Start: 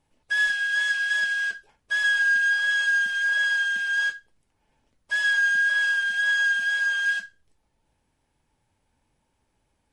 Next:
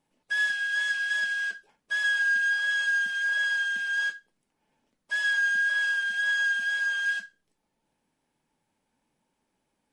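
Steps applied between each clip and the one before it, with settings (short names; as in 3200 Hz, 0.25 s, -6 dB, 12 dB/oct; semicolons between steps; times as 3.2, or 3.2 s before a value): resonant low shelf 130 Hz -11 dB, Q 1.5; gain -3.5 dB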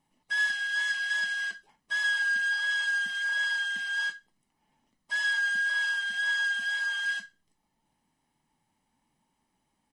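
comb 1 ms, depth 52%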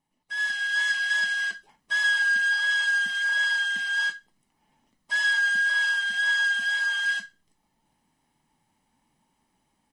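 AGC gain up to 10 dB; gain -5.5 dB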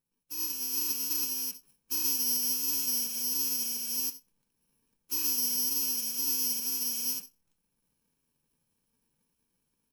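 FFT order left unsorted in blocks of 64 samples; gain -6.5 dB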